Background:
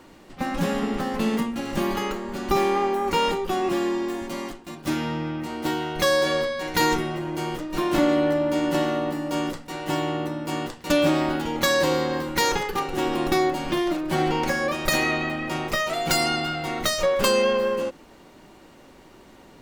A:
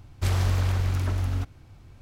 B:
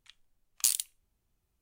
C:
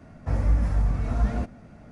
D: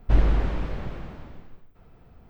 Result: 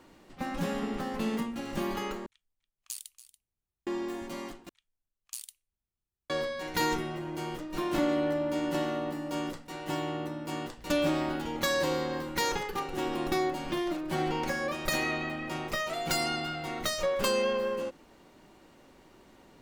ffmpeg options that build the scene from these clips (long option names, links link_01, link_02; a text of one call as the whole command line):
ffmpeg -i bed.wav -i cue0.wav -i cue1.wav -i cue2.wav -i cue3.wav -filter_complex "[2:a]asplit=2[link_01][link_02];[0:a]volume=-7.5dB[link_03];[link_01]aecho=1:1:284:0.178[link_04];[4:a]acompressor=threshold=-34dB:ratio=6:attack=3.2:release=140:knee=1:detection=peak[link_05];[link_03]asplit=3[link_06][link_07][link_08];[link_06]atrim=end=2.264[link_09];[link_04]atrim=end=1.61,asetpts=PTS-STARTPTS,volume=-13.5dB[link_10];[link_07]atrim=start=3.866:end=4.694[link_11];[link_02]atrim=end=1.61,asetpts=PTS-STARTPTS,volume=-14.5dB[link_12];[link_08]atrim=start=6.296[link_13];[link_05]atrim=end=2.29,asetpts=PTS-STARTPTS,volume=-17dB,afade=type=in:duration=0.004:curve=hsin,afade=type=out:start_time=2.286:duration=0.004:curve=hsin,adelay=10690[link_14];[link_09][link_10]acrossfade=duration=0.004:curve1=hsin:curve2=hsin[link_15];[link_15][link_11]acrossfade=duration=0.004:curve1=hsin:curve2=hsin[link_16];[link_16][link_12]acrossfade=duration=0.004:curve1=hsin:curve2=hsin[link_17];[link_17][link_13]acrossfade=duration=0.004:curve1=hsin:curve2=hsin[link_18];[link_18][link_14]amix=inputs=2:normalize=0" out.wav